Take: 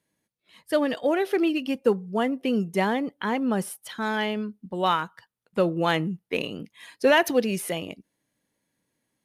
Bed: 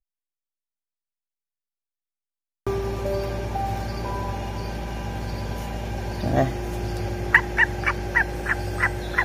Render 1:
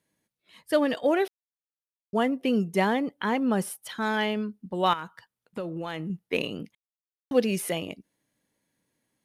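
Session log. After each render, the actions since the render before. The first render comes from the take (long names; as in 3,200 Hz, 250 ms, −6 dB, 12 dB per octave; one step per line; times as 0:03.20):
0:01.28–0:02.13: silence
0:04.93–0:06.10: downward compressor, threshold −30 dBFS
0:06.75–0:07.31: silence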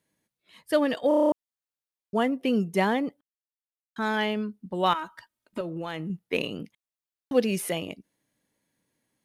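0:01.08: stutter in place 0.03 s, 8 plays
0:03.21–0:03.96: silence
0:04.94–0:05.61: comb filter 3.2 ms, depth 98%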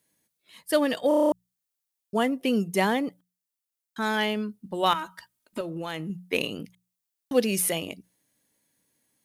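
high-shelf EQ 5,000 Hz +11 dB
mains-hum notches 60/120/180 Hz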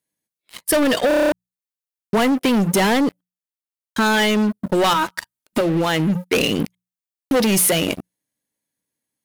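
leveller curve on the samples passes 5
downward compressor, threshold −15 dBFS, peak gain reduction 4.5 dB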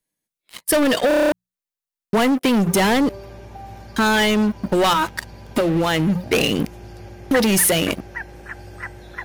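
mix in bed −10.5 dB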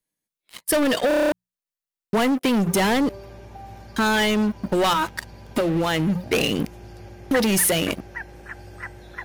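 level −3 dB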